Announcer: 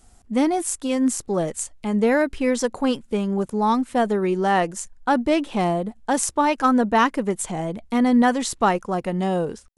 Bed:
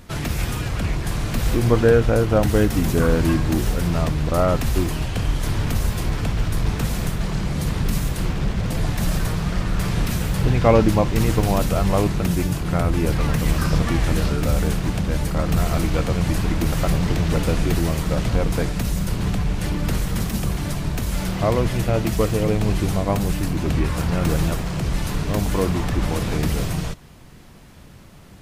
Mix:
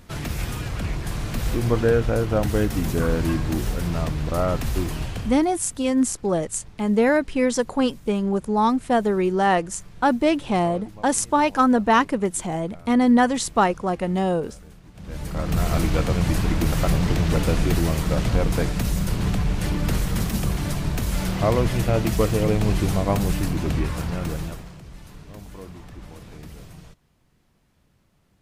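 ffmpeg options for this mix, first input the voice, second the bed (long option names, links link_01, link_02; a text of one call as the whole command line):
ffmpeg -i stem1.wav -i stem2.wav -filter_complex "[0:a]adelay=4950,volume=0.5dB[link_01];[1:a]volume=20.5dB,afade=type=out:start_time=5.06:duration=0.41:silence=0.0891251,afade=type=in:start_time=14.94:duration=0.82:silence=0.0595662,afade=type=out:start_time=23.38:duration=1.43:silence=0.11885[link_02];[link_01][link_02]amix=inputs=2:normalize=0" out.wav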